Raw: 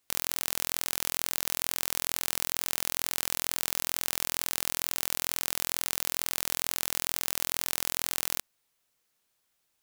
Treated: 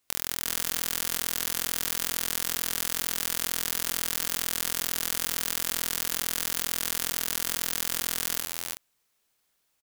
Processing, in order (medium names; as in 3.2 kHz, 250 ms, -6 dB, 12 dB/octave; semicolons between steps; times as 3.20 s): multi-tap echo 48/76/336/373 ms -8.5/-14/-4/-10 dB